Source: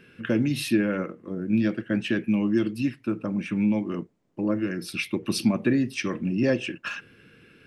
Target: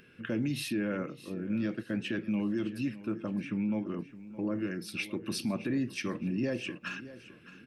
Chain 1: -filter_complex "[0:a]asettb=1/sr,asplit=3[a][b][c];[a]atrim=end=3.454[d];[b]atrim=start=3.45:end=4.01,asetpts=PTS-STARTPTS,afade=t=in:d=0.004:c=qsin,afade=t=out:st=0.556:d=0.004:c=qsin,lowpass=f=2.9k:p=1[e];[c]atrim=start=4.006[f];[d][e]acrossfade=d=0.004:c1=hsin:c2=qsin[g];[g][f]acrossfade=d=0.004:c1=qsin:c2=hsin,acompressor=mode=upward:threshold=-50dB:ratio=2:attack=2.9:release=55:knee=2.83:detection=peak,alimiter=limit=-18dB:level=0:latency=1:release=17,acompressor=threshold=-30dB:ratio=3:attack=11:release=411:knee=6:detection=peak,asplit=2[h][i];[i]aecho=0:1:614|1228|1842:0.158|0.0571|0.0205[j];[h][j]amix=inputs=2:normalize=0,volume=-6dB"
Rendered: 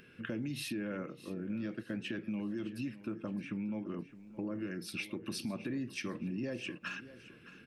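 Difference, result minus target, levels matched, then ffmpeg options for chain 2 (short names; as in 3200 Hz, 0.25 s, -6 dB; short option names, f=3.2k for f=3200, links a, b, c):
compressor: peak gain reduction +7 dB
-filter_complex "[0:a]asettb=1/sr,asplit=3[a][b][c];[a]atrim=end=3.454[d];[b]atrim=start=3.45:end=4.01,asetpts=PTS-STARTPTS,afade=t=in:d=0.004:c=qsin,afade=t=out:st=0.556:d=0.004:c=qsin,lowpass=f=2.9k:p=1[e];[c]atrim=start=4.006[f];[d][e]acrossfade=d=0.004:c1=hsin:c2=qsin[g];[g][f]acrossfade=d=0.004:c1=qsin:c2=hsin,acompressor=mode=upward:threshold=-50dB:ratio=2:attack=2.9:release=55:knee=2.83:detection=peak,alimiter=limit=-18dB:level=0:latency=1:release=17,asplit=2[h][i];[i]aecho=0:1:614|1228|1842:0.158|0.0571|0.0205[j];[h][j]amix=inputs=2:normalize=0,volume=-6dB"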